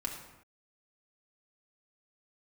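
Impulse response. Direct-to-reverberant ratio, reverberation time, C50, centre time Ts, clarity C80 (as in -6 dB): -2.0 dB, not exponential, 4.5 dB, 36 ms, 7.0 dB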